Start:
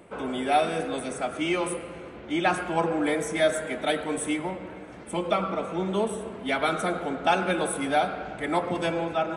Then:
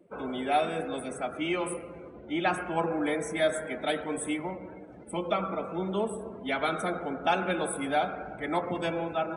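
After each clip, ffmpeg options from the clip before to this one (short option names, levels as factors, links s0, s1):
-af "afftdn=nr=17:nf=-43,volume=0.668"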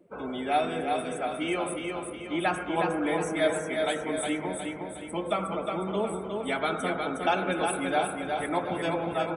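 -af "aecho=1:1:362|724|1086|1448|1810|2172:0.596|0.28|0.132|0.0618|0.0291|0.0137"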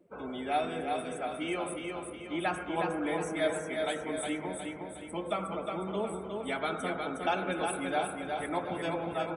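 -af "equalizer=f=75:t=o:w=0.24:g=4.5,volume=0.596"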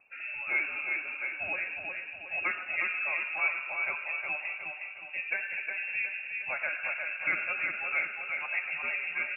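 -filter_complex "[0:a]acrossover=split=100|1100|1600[s0][s1][s2][s3];[s3]acompressor=mode=upward:threshold=0.00112:ratio=2.5[s4];[s0][s1][s2][s4]amix=inputs=4:normalize=0,lowpass=f=2500:t=q:w=0.5098,lowpass=f=2500:t=q:w=0.6013,lowpass=f=2500:t=q:w=0.9,lowpass=f=2500:t=q:w=2.563,afreqshift=-2900"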